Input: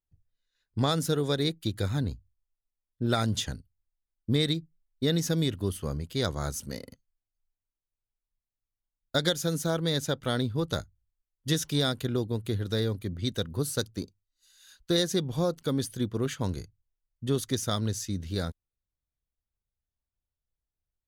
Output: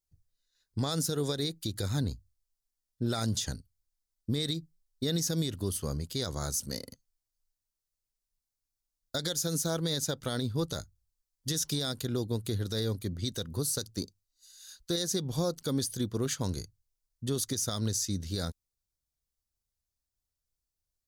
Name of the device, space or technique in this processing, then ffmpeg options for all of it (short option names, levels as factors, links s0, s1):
over-bright horn tweeter: -af "highshelf=f=3700:t=q:w=1.5:g=7,alimiter=limit=0.1:level=0:latency=1:release=76,volume=0.891"